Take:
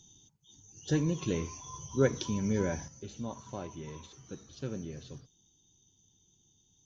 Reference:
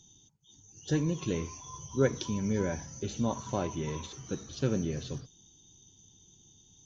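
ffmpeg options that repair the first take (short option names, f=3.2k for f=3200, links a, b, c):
-af "asetnsamples=n=441:p=0,asendcmd='2.88 volume volume 8.5dB',volume=0dB"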